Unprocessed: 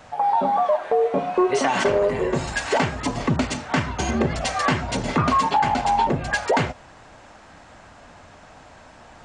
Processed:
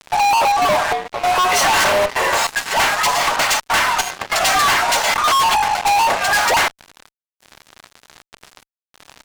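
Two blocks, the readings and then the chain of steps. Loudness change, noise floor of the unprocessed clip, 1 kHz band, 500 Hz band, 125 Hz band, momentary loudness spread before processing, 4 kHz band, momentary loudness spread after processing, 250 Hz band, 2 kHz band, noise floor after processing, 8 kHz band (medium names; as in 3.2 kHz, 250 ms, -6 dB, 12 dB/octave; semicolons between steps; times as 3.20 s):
+6.5 dB, -47 dBFS, +6.5 dB, 0.0 dB, -9.5 dB, 5 LU, +13.0 dB, 5 LU, -9.0 dB, +10.0 dB, under -85 dBFS, +13.5 dB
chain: high-pass 750 Hz 24 dB/octave; trance gate "xxxxx.xxx...xxx" 146 bpm -12 dB; fuzz box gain 36 dB, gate -43 dBFS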